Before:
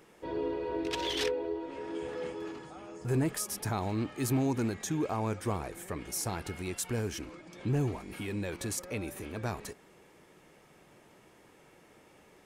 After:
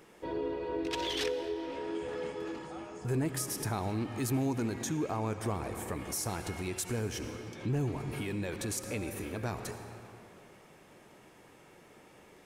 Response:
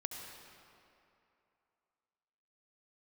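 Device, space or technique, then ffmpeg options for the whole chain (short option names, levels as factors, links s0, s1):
ducked reverb: -filter_complex "[0:a]asplit=3[s0][s1][s2];[1:a]atrim=start_sample=2205[s3];[s1][s3]afir=irnorm=-1:irlink=0[s4];[s2]apad=whole_len=549380[s5];[s4][s5]sidechaincompress=threshold=0.0158:ratio=8:attack=16:release=224,volume=1.33[s6];[s0][s6]amix=inputs=2:normalize=0,volume=0.596"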